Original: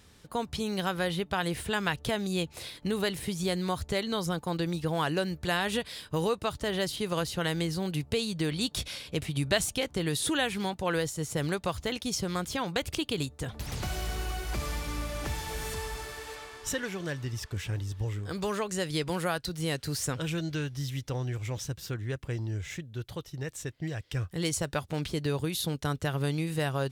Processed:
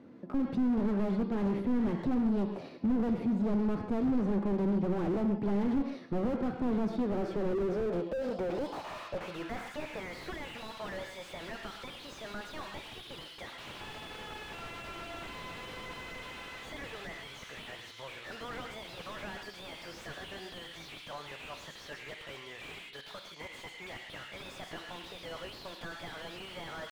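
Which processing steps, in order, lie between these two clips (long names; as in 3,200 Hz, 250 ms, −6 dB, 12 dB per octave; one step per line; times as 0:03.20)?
band-pass filter sweep 220 Hz → 2,800 Hz, 0:06.89–0:10.69
mid-hump overdrive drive 30 dB, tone 1,200 Hz, clips at −19 dBFS
pitch shifter +2.5 semitones
reverb whose tail is shaped and stops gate 170 ms flat, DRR 7.5 dB
slew-rate limiting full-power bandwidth 13 Hz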